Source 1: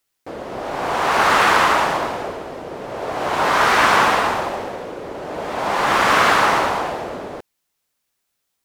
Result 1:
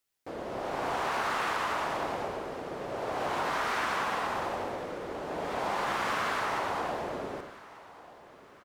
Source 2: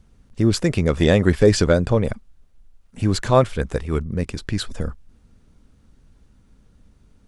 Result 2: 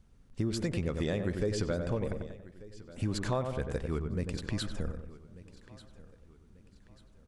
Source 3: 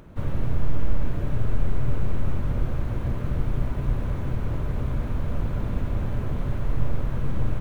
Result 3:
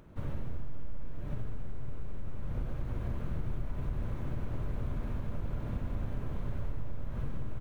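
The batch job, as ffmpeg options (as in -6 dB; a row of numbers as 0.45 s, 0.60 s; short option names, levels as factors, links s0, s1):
-filter_complex "[0:a]asplit=2[s0][s1];[s1]adelay=94,lowpass=f=1600:p=1,volume=0.447,asplit=2[s2][s3];[s3]adelay=94,lowpass=f=1600:p=1,volume=0.43,asplit=2[s4][s5];[s5]adelay=94,lowpass=f=1600:p=1,volume=0.43,asplit=2[s6][s7];[s7]adelay=94,lowpass=f=1600:p=1,volume=0.43,asplit=2[s8][s9];[s9]adelay=94,lowpass=f=1600:p=1,volume=0.43[s10];[s2][s4][s6][s8][s10]amix=inputs=5:normalize=0[s11];[s0][s11]amix=inputs=2:normalize=0,acompressor=threshold=0.1:ratio=6,asplit=2[s12][s13];[s13]aecho=0:1:1190|2380|3570:0.112|0.0426|0.0162[s14];[s12][s14]amix=inputs=2:normalize=0,volume=0.398"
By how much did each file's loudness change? -15.0 LU, -14.0 LU, -10.5 LU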